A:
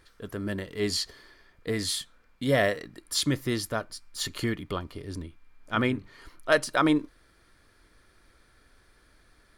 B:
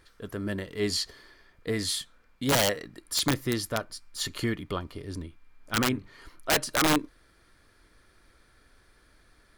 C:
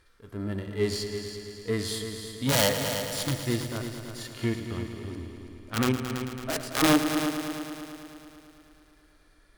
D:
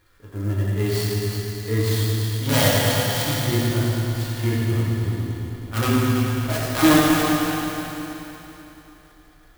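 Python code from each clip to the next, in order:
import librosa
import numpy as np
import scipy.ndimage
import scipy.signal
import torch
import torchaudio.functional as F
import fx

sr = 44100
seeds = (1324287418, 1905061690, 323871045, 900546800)

y1 = (np.mod(10.0 ** (16.5 / 20.0) * x + 1.0, 2.0) - 1.0) / 10.0 ** (16.5 / 20.0)
y2 = fx.cheby_harmonics(y1, sr, harmonics=(3, 8), levels_db=(-15, -31), full_scale_db=-16.0)
y2 = fx.hpss(y2, sr, part='percussive', gain_db=-17)
y2 = fx.echo_heads(y2, sr, ms=110, heads='all three', feedback_pct=59, wet_db=-12.0)
y2 = F.gain(torch.from_numpy(y2), 7.5).numpy()
y3 = fx.rev_fdn(y2, sr, rt60_s=3.5, lf_ratio=1.0, hf_ratio=0.75, size_ms=56.0, drr_db=-6.5)
y3 = fx.clock_jitter(y3, sr, seeds[0], jitter_ms=0.032)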